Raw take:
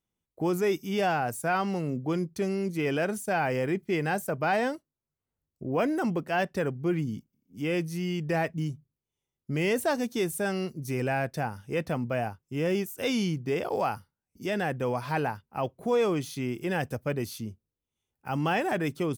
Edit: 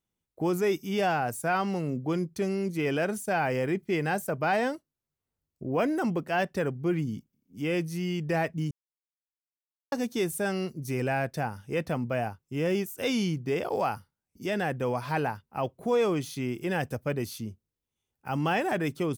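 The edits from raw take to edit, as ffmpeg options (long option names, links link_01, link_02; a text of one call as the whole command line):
ffmpeg -i in.wav -filter_complex "[0:a]asplit=3[link_01][link_02][link_03];[link_01]atrim=end=8.71,asetpts=PTS-STARTPTS,afade=type=out:start_time=8.706:duration=0.004:curve=hsin[link_04];[link_02]atrim=start=8.71:end=9.92,asetpts=PTS-STARTPTS,volume=0[link_05];[link_03]atrim=start=9.92,asetpts=PTS-STARTPTS,afade=type=in:duration=0.004:curve=hsin[link_06];[link_04][link_05][link_06]concat=n=3:v=0:a=1" out.wav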